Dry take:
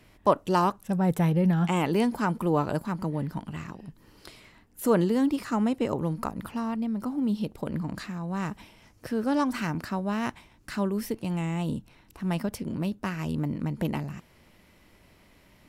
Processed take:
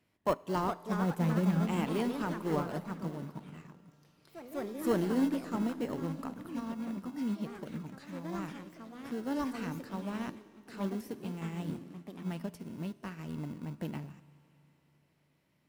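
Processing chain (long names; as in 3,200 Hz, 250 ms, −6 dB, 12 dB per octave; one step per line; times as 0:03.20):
high-pass filter 110 Hz
in parallel at −10.5 dB: sample-rate reduction 1,200 Hz, jitter 0%
on the sum: soft clipping −11 dBFS, distortion −25 dB
on a send at −11 dB: convolution reverb RT60 3.9 s, pre-delay 4 ms
on the sum: delay with pitch and tempo change per echo 455 ms, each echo +3 semitones, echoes 2, each echo −6 dB
expander for the loud parts 1.5 to 1, over −40 dBFS
level −6.5 dB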